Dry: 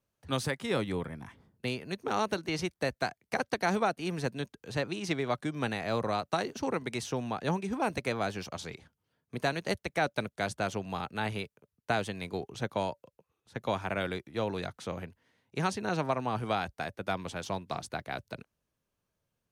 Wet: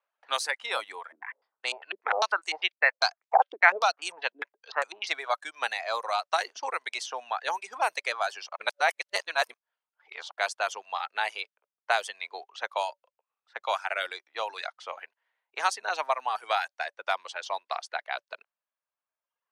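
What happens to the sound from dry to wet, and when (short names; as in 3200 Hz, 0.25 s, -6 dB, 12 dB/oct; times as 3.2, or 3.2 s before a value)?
1.12–5.07 stepped low-pass 10 Hz 330–7900 Hz
8.56–10.31 reverse
whole clip: low-pass opened by the level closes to 2200 Hz, open at -25.5 dBFS; reverb removal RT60 1.3 s; HPF 700 Hz 24 dB/oct; gain +7 dB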